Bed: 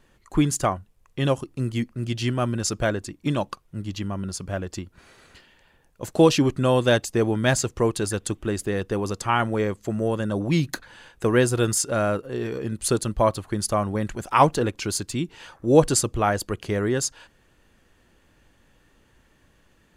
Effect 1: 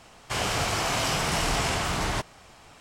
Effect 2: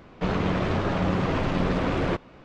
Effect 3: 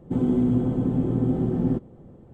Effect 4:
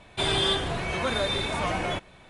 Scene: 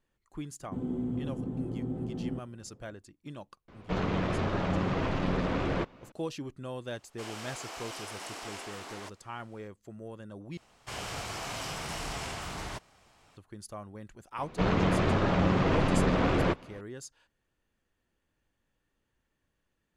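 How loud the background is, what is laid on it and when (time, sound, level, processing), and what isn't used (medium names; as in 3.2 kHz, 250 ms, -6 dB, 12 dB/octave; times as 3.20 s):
bed -19.5 dB
0.61 s: add 3 -12 dB
3.68 s: add 2 -5 dB
6.88 s: add 1 -15 dB + high-pass 270 Hz 24 dB/octave
10.57 s: replace with 1 -11 dB
14.37 s: add 2 -1 dB
not used: 4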